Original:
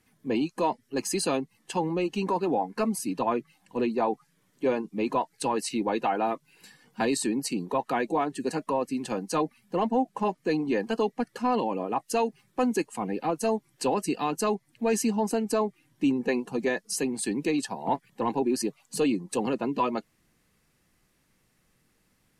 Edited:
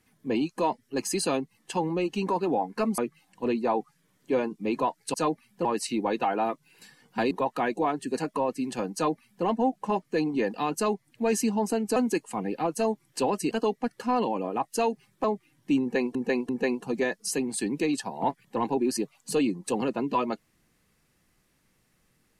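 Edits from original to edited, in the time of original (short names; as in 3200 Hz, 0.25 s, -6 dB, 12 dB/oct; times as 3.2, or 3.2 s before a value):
2.98–3.31 cut
7.13–7.64 cut
9.27–9.78 copy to 5.47
10.87–12.6 swap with 14.15–15.57
16.14–16.48 loop, 3 plays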